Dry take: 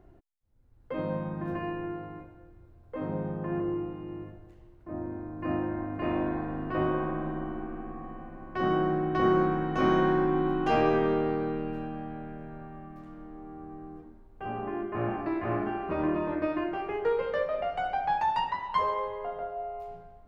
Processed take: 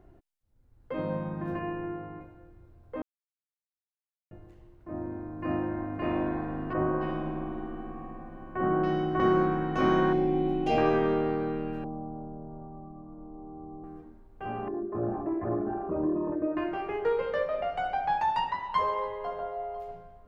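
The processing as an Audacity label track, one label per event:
1.590000	2.210000	low-pass 2.9 kHz
3.020000	4.310000	mute
6.730000	9.200000	bands offset in time lows, highs 280 ms, split 2.1 kHz
10.130000	10.780000	high-order bell 1.3 kHz -13.5 dB 1.1 oct
11.840000	13.840000	steep low-pass 1.1 kHz 48 dB/octave
14.680000	16.570000	resonances exaggerated exponent 2
18.430000	19.410000	echo throw 500 ms, feedback 20%, level -15.5 dB

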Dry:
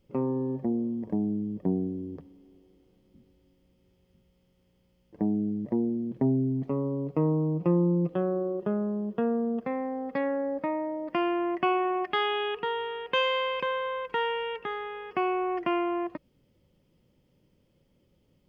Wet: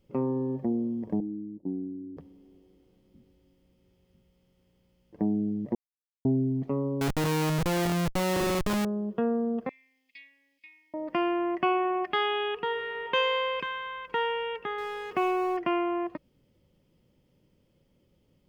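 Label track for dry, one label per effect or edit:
1.200000	2.170000	cascade formant filter u
5.750000	6.250000	mute
7.010000	8.850000	Schmitt trigger flips at -37.5 dBFS
9.690000	10.940000	elliptic high-pass 2.3 kHz
12.670000	13.090000	reverb throw, RT60 1.6 s, DRR 4 dB
13.610000	14.080000	high-order bell 660 Hz -15.5 dB 1.1 oct
14.780000	15.570000	companding laws mixed up coded by mu

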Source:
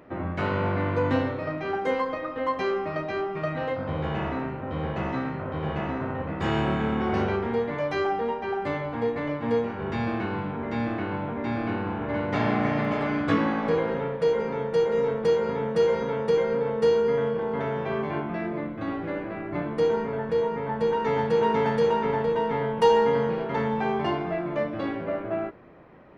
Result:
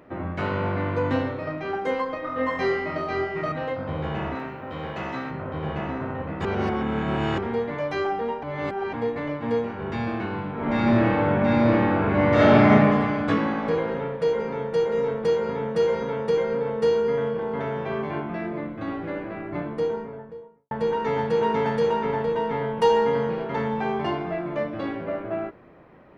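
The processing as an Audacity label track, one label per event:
2.220000	3.520000	flutter echo walls apart 4 m, dies away in 0.78 s
4.350000	5.310000	tilt EQ +2 dB/octave
6.450000	7.380000	reverse
8.430000	8.930000	reverse
10.530000	12.710000	reverb throw, RT60 1.8 s, DRR -8.5 dB
19.430000	20.710000	studio fade out

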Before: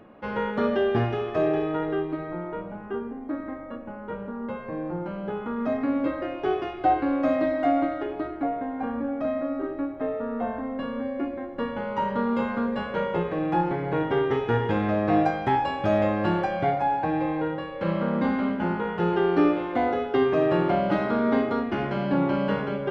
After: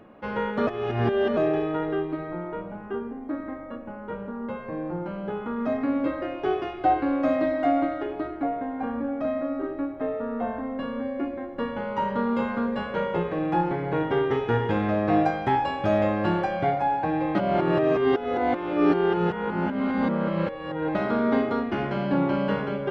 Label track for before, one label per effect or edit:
0.670000	1.370000	reverse
17.350000	20.950000	reverse

